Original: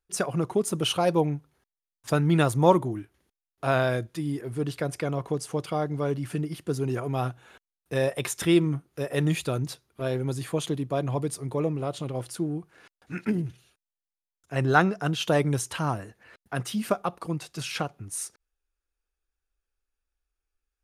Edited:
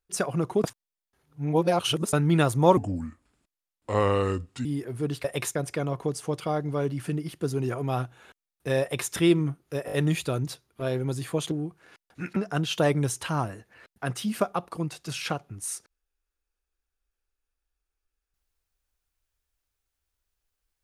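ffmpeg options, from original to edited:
-filter_complex "[0:a]asplit=12[a][b][c][d][e][f][g][h][i][j][k][l];[a]atrim=end=0.642[m];[b]atrim=start=0.638:end=2.132,asetpts=PTS-STARTPTS,areverse[n];[c]atrim=start=2.128:end=2.774[o];[d]atrim=start=2.77:end=4.22,asetpts=PTS-STARTPTS,asetrate=33957,aresample=44100,atrim=end_sample=83045,asetpts=PTS-STARTPTS[p];[e]atrim=start=4.216:end=4.812[q];[f]atrim=start=8.068:end=8.382[r];[g]atrim=start=4.808:end=9.142[s];[h]atrim=start=9.118:end=9.142[t];[i]atrim=start=9.118:end=9.142[u];[j]atrim=start=9.118:end=10.712[v];[k]atrim=start=12.428:end=13.282[w];[l]atrim=start=14.858[x];[m][n]acrossfade=d=0.004:c1=hsin:c2=hsin[y];[y][o]acrossfade=d=0.004:c1=hsin:c2=hsin[z];[z][p]acrossfade=d=0.004:c1=hsin:c2=hsin[aa];[aa][q]acrossfade=d=0.004:c1=hsin:c2=hsin[ab];[ab][r]acrossfade=d=0.004:c1=hsin:c2=hsin[ac];[ac][s]acrossfade=d=0.004:c1=hsin:c2=hsin[ad];[ad][t]acrossfade=d=0.004:c1=hsin:c2=hsin[ae];[ae][u]acrossfade=d=0.004:c1=hsin:c2=hsin[af];[af][v]acrossfade=d=0.004:c1=hsin:c2=hsin[ag];[ag][w]acrossfade=d=0.004:c1=hsin:c2=hsin[ah];[ah][x]acrossfade=d=0.004:c1=hsin:c2=hsin"

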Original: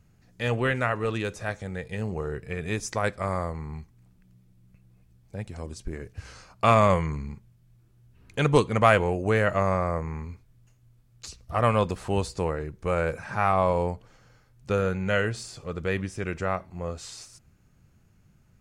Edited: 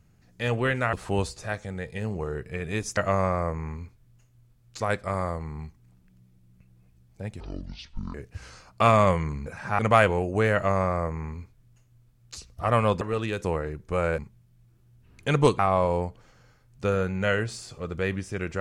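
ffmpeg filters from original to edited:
-filter_complex "[0:a]asplit=13[a][b][c][d][e][f][g][h][i][j][k][l][m];[a]atrim=end=0.932[n];[b]atrim=start=11.918:end=12.382[o];[c]atrim=start=1.358:end=2.942[p];[d]atrim=start=9.448:end=11.282[q];[e]atrim=start=2.938:end=5.544[r];[f]atrim=start=5.54:end=5.97,asetpts=PTS-STARTPTS,asetrate=25578,aresample=44100[s];[g]atrim=start=5.966:end=7.292[t];[h]atrim=start=13.118:end=13.452[u];[i]atrim=start=8.698:end=11.922[v];[j]atrim=start=0.928:end=1.362[w];[k]atrim=start=12.378:end=13.122[x];[l]atrim=start=7.288:end=8.702[y];[m]atrim=start=13.448[z];[n][o]acrossfade=d=0.004:c1=hsin:c2=hsin[aa];[aa][p]acrossfade=d=0.004:c1=hsin:c2=hsin[ab];[ab][q]acrossfade=d=0.004:c1=hsin:c2=hsin[ac];[ac][r]acrossfade=d=0.004:c1=hsin:c2=hsin[ad];[ad][s]acrossfade=d=0.004:c1=hsin:c2=hsin[ae];[ae][t]acrossfade=d=0.004:c1=hsin:c2=hsin[af];[af][u]acrossfade=d=0.004:c1=hsin:c2=hsin[ag];[ag][v]acrossfade=d=0.004:c1=hsin:c2=hsin[ah];[ah][w]acrossfade=d=0.004:c1=hsin:c2=hsin[ai];[ai][x]acrossfade=d=0.004:c1=hsin:c2=hsin[aj];[aj][y]acrossfade=d=0.004:c1=hsin:c2=hsin[ak];[ak][z]acrossfade=d=0.004:c1=hsin:c2=hsin"

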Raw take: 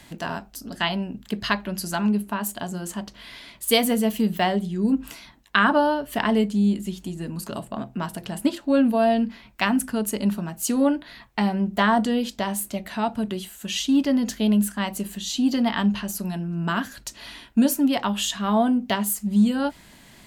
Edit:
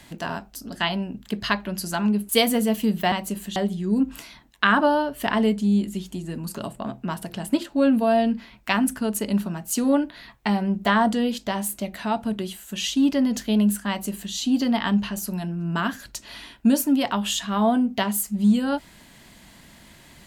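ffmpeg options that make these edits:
-filter_complex "[0:a]asplit=4[a][b][c][d];[a]atrim=end=2.292[e];[b]atrim=start=3.648:end=4.482[f];[c]atrim=start=14.808:end=15.252[g];[d]atrim=start=4.478[h];[e][f]acrossfade=d=0.004:c1=hsin:c2=hsin[i];[i][g]acrossfade=d=0.004:c1=hsin:c2=hsin[j];[j][h]acrossfade=d=0.004:c1=hsin:c2=hsin"

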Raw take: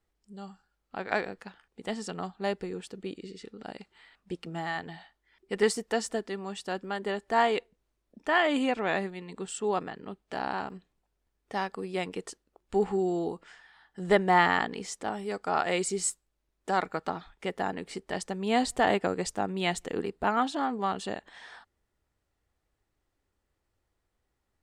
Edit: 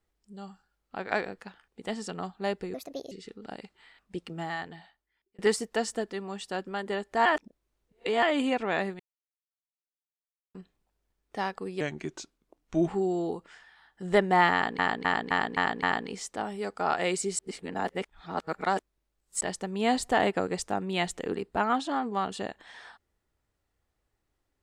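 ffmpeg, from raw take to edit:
-filter_complex "[0:a]asplit=17[a][b][c][d][e][f][g][h][i][j][k][l][m][n][o][p][q];[a]atrim=end=2.744[r];[b]atrim=start=2.74:end=3.28,asetpts=PTS-STARTPTS,asetrate=63504,aresample=44100[s];[c]atrim=start=3.276:end=5.55,asetpts=PTS-STARTPTS,afade=t=out:st=1.304:d=0.97[t];[d]atrim=start=5.55:end=7.422,asetpts=PTS-STARTPTS,afade=t=in:d=0.004:c=hsin[u];[e]atrim=start=7.418:end=8.392,asetpts=PTS-STARTPTS,areverse[v];[f]atrim=start=8.388:end=9.16,asetpts=PTS-STARTPTS,afade=t=out:st=0.768:d=0.004:c=hsin[w];[g]atrim=start=9.16:end=10.71,asetpts=PTS-STARTPTS,volume=0[x];[h]atrim=start=10.71:end=11.974,asetpts=PTS-STARTPTS,afade=t=in:d=0.004:c=hsin[y];[i]atrim=start=11.97:end=12.85,asetpts=PTS-STARTPTS,asetrate=36162,aresample=44100[z];[j]atrim=start=12.846:end=14.762[aa];[k]atrim=start=14.498:end=14.762[ab];[l]atrim=start=14.498:end=14.762[ac];[m]atrim=start=14.498:end=14.762[ad];[n]atrim=start=14.498:end=14.762[ae];[o]atrim=start=14.498:end=16.062[af];[p]atrim=start=16.058:end=18.082,asetpts=PTS-STARTPTS,areverse[ag];[q]atrim=start=18.078[ah];[r][s]acrossfade=d=0.004:c1=hsin:c2=hsin[ai];[t][u]concat=n=2:v=0:a=1[aj];[ai][aj]acrossfade=d=0.004:c1=hsin:c2=hsin[ak];[ak][v]acrossfade=d=0.004:c1=hsin:c2=hsin[al];[w][x][y]concat=n=3:v=0:a=1[am];[al][am]acrossfade=d=0.004:c1=hsin:c2=hsin[an];[an][z]acrossfade=d=0.004:c1=hsin:c2=hsin[ao];[ao][aa]acrossfade=d=0.004:c1=hsin:c2=hsin[ap];[ap][ab]acrossfade=d=0.004:c1=hsin:c2=hsin[aq];[aq][ac]acrossfade=d=0.004:c1=hsin:c2=hsin[ar];[ar][ad]acrossfade=d=0.004:c1=hsin:c2=hsin[as];[as][ae]acrossfade=d=0.004:c1=hsin:c2=hsin[at];[at][af]acrossfade=d=0.004:c1=hsin:c2=hsin[au];[au][ag]acrossfade=d=0.004:c1=hsin:c2=hsin[av];[av][ah]acrossfade=d=0.004:c1=hsin:c2=hsin"

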